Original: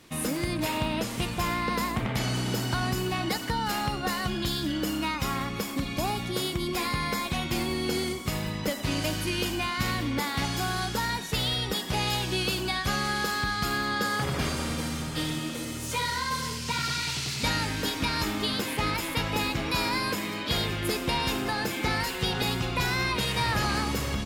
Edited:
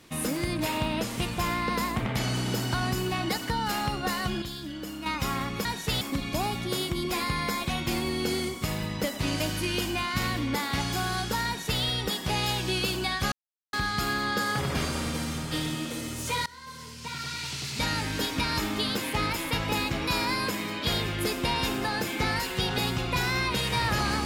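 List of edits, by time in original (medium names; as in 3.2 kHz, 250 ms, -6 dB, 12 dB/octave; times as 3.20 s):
4.42–5.06 s: gain -8 dB
11.10–11.46 s: copy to 5.65 s
12.96–13.37 s: mute
16.10–17.79 s: fade in, from -20 dB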